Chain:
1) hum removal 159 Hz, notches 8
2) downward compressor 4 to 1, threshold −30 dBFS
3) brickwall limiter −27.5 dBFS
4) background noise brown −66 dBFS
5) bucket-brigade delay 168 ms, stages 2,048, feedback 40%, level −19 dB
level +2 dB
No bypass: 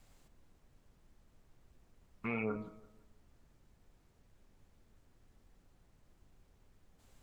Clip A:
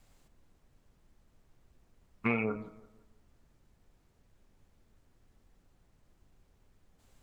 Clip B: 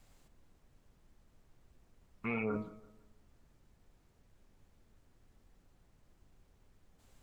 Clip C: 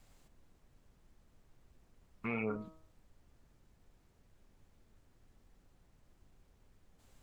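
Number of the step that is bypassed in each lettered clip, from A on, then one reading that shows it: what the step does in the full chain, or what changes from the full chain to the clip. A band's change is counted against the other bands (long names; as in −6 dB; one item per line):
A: 3, average gain reduction 2.5 dB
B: 2, average gain reduction 7.0 dB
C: 5, echo-to-direct ratio −20.0 dB to none audible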